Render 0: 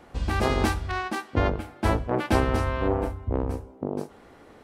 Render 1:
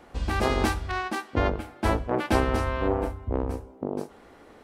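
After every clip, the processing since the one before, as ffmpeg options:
-af "equalizer=f=120:t=o:w=1.1:g=-4.5"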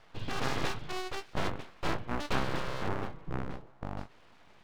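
-af "lowpass=f=3.5k:t=q:w=1.9,aeval=exprs='abs(val(0))':c=same,volume=-6.5dB"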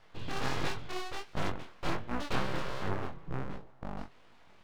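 -af "flanger=delay=20:depth=5.5:speed=1.4,volume=1.5dB"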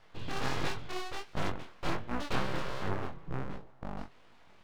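-af anull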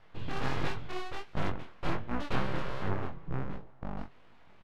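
-af "bass=f=250:g=3,treble=f=4k:g=-8,aresample=32000,aresample=44100"

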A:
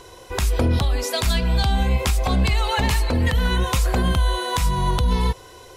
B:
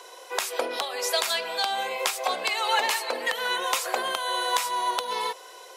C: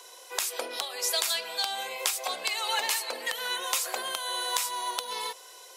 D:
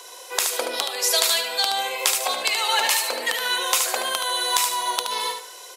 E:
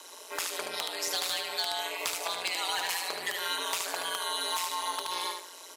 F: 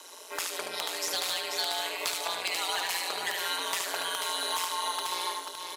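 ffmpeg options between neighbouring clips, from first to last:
-af "highpass=f=480:w=0.5412,highpass=f=480:w=1.3066"
-af "highshelf=f=3.3k:g=11.5,volume=-8dB"
-af "aecho=1:1:74|148|222|296:0.473|0.142|0.0426|0.0128,volume=7dB"
-filter_complex "[0:a]asoftclip=type=hard:threshold=-15dB,aeval=exprs='val(0)*sin(2*PI*89*n/s)':c=same,acrossover=split=860|5200[a][b][c];[a]acompressor=threshold=-36dB:ratio=4[d];[b]acompressor=threshold=-27dB:ratio=4[e];[c]acompressor=threshold=-33dB:ratio=4[f];[d][e][f]amix=inputs=3:normalize=0,volume=-3.5dB"
-af "aecho=1:1:488:0.501"

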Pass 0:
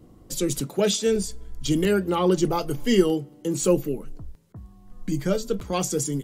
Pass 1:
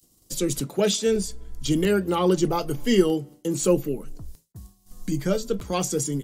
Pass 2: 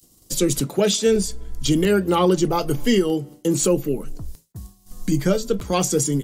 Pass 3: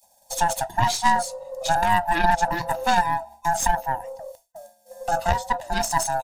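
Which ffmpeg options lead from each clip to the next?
-filter_complex "[0:a]agate=range=-33dB:threshold=-39dB:ratio=3:detection=peak,acrossover=split=4500[a][b];[b]acompressor=mode=upward:threshold=-40dB:ratio=2.5[c];[a][c]amix=inputs=2:normalize=0"
-af "alimiter=limit=-14.5dB:level=0:latency=1:release=313,volume=6dB"
-af "afftfilt=real='real(if(lt(b,1008),b+24*(1-2*mod(floor(b/24),2)),b),0)':imag='imag(if(lt(b,1008),b+24*(1-2*mod(floor(b/24),2)),b),0)':win_size=2048:overlap=0.75,aecho=1:1:1.1:0.47,aeval=exprs='0.596*(cos(1*acos(clip(val(0)/0.596,-1,1)))-cos(1*PI/2))+0.237*(cos(2*acos(clip(val(0)/0.596,-1,1)))-cos(2*PI/2))+0.0841*(cos(3*acos(clip(val(0)/0.596,-1,1)))-cos(3*PI/2))+0.0266*(cos(5*acos(clip(val(0)/0.596,-1,1)))-cos(5*PI/2))':c=same,volume=-3.5dB"

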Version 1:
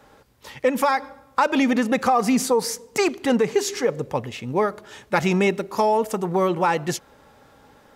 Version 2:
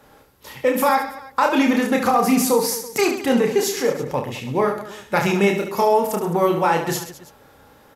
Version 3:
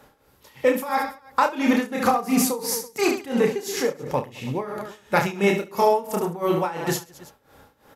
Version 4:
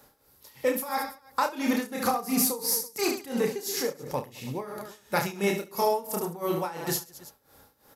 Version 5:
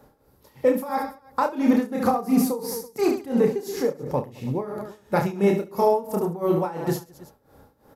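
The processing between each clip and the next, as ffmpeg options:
-filter_complex "[0:a]equalizer=f=12k:t=o:w=0.29:g=11.5,asplit=2[a][b];[b]aecho=0:1:30|72|130.8|213.1|328.4:0.631|0.398|0.251|0.158|0.1[c];[a][c]amix=inputs=2:normalize=0"
-af "tremolo=f=2.9:d=0.85"
-af "aexciter=amount=1.2:drive=9.5:freq=4.1k,volume=-6.5dB"
-af "tiltshelf=f=1.4k:g=8.5"

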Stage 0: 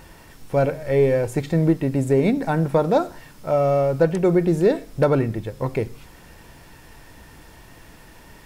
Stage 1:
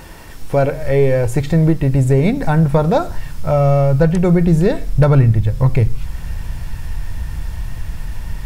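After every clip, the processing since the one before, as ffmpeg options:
-filter_complex "[0:a]asubboost=boost=11:cutoff=100,asplit=2[a][b];[b]acompressor=threshold=-24dB:ratio=6,volume=0.5dB[c];[a][c]amix=inputs=2:normalize=0,volume=2dB"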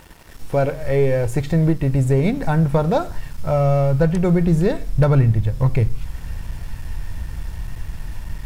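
-af "aeval=exprs='sgn(val(0))*max(abs(val(0))-0.0106,0)':c=same,volume=-3.5dB"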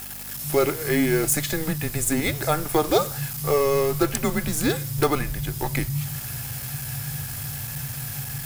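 -af "afreqshift=-150,aeval=exprs='val(0)+0.02*(sin(2*PI*50*n/s)+sin(2*PI*2*50*n/s)/2+sin(2*PI*3*50*n/s)/3+sin(2*PI*4*50*n/s)/4+sin(2*PI*5*50*n/s)/5)':c=same,aemphasis=mode=production:type=riaa,volume=2.5dB"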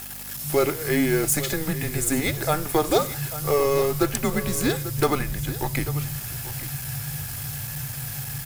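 -af "aecho=1:1:842:0.2" -ar 44100 -c:a libmp3lame -b:a 112k

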